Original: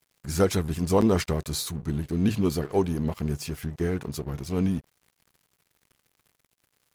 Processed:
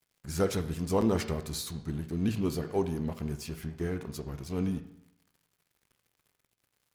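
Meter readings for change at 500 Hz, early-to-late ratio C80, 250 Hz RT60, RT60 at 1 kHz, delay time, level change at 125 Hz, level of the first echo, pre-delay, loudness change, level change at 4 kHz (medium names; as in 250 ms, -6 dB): -5.5 dB, 15.0 dB, 0.80 s, 0.75 s, no echo, -6.0 dB, no echo, 17 ms, -5.5 dB, -6.0 dB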